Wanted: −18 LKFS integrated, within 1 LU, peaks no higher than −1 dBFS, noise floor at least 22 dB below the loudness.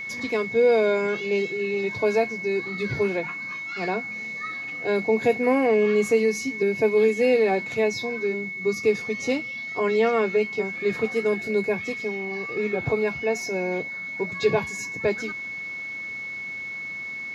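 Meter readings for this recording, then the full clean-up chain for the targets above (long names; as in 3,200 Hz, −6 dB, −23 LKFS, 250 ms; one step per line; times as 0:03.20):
crackle rate 43 per second; interfering tone 2,200 Hz; level of the tone −31 dBFS; integrated loudness −24.5 LKFS; sample peak −9.0 dBFS; target loudness −18.0 LKFS
→ click removal
notch filter 2,200 Hz, Q 30
level +6.5 dB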